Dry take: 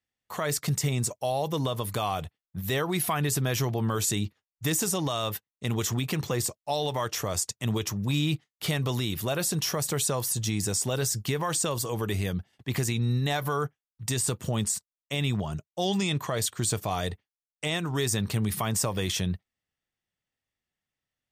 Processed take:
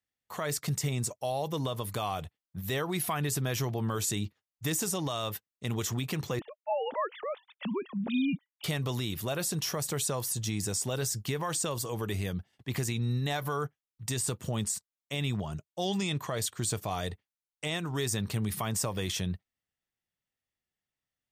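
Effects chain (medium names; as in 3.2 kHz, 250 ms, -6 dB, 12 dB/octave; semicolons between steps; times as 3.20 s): 6.39–8.64 s: formants replaced by sine waves; trim -4 dB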